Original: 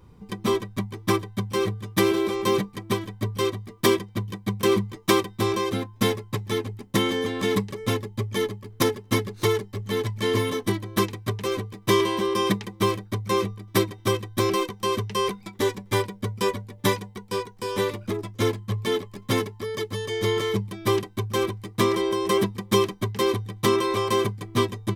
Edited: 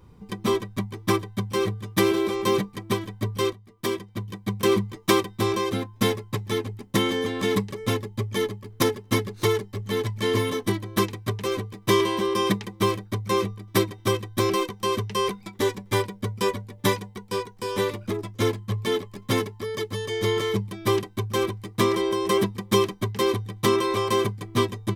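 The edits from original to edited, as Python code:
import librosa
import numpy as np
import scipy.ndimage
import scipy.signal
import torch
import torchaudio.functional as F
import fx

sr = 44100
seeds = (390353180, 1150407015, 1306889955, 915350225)

y = fx.edit(x, sr, fx.fade_in_from(start_s=3.53, length_s=1.09, floor_db=-16.0), tone=tone)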